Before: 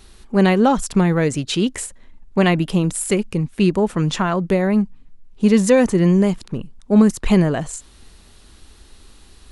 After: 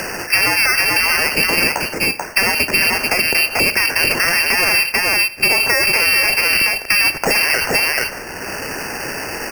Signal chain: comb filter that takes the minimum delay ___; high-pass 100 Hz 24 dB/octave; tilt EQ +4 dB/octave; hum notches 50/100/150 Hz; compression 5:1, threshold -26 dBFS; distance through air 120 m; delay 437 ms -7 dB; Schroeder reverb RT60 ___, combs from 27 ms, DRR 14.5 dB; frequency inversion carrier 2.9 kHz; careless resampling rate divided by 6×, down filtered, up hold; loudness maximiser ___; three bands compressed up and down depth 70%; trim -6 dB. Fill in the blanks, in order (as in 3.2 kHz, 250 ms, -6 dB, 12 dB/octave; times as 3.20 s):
0.86 ms, 0.48 s, +26.5 dB